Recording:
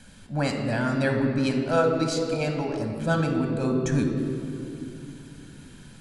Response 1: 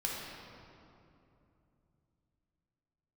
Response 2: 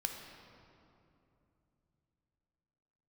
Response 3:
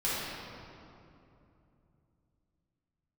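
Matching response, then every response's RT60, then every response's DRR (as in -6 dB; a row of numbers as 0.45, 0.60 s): 2; 2.8, 2.9, 2.8 s; -3.5, 3.0, -10.0 dB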